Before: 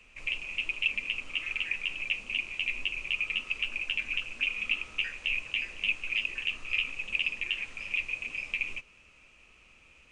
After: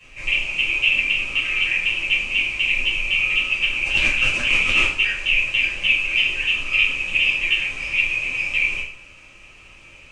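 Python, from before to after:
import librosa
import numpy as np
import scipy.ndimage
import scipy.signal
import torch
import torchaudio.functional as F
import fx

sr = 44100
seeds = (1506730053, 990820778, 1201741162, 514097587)

y = fx.transient(x, sr, attack_db=-9, sustain_db=12, at=(3.82, 4.85))
y = fx.rev_double_slope(y, sr, seeds[0], early_s=0.47, late_s=1.6, knee_db=-28, drr_db=-9.5)
y = y * 10.0 ** (2.5 / 20.0)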